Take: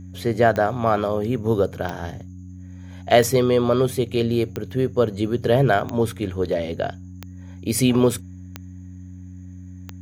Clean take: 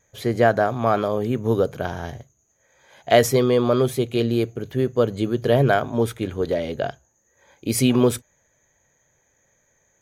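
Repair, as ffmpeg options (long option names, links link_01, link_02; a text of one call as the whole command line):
ffmpeg -i in.wav -af "adeclick=threshold=4,bandreject=frequency=91.4:width_type=h:width=4,bandreject=frequency=182.8:width_type=h:width=4,bandreject=frequency=274.2:width_type=h:width=4" out.wav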